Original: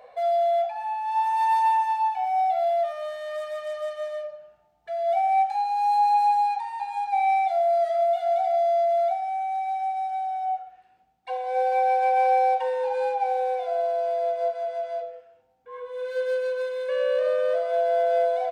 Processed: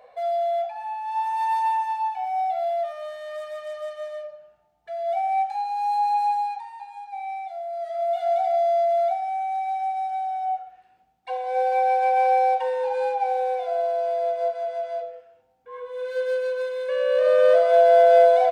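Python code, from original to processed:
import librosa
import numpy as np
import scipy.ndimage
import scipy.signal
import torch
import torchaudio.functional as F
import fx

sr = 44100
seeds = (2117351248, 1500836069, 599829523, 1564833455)

y = fx.gain(x, sr, db=fx.line((6.32, -2.0), (7.02, -10.5), (7.71, -10.5), (8.22, 1.0), (17.04, 1.0), (17.45, 8.0)))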